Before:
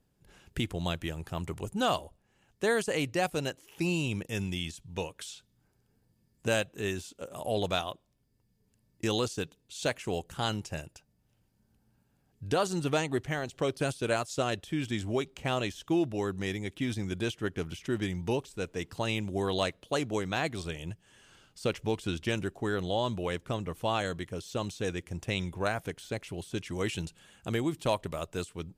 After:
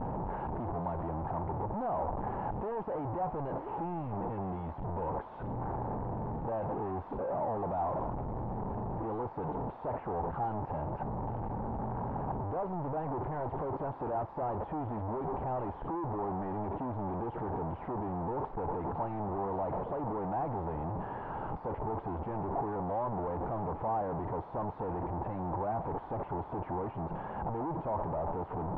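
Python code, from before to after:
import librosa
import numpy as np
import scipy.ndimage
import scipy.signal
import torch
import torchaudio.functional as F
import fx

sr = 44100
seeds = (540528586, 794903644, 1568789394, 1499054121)

y = np.sign(x) * np.sqrt(np.mean(np.square(x)))
y = fx.ladder_lowpass(y, sr, hz=970.0, resonance_pct=65)
y = y * 10.0 ** (8.0 / 20.0)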